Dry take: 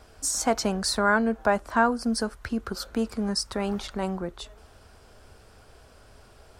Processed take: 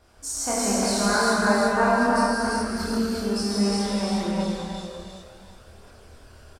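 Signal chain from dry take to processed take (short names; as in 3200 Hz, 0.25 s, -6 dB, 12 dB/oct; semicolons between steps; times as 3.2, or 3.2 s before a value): feedback echo 0.352 s, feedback 34%, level -4 dB; non-linear reverb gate 0.45 s flat, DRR -7 dB; chorus voices 2, 0.34 Hz, delay 27 ms, depth 1.9 ms; gain -3 dB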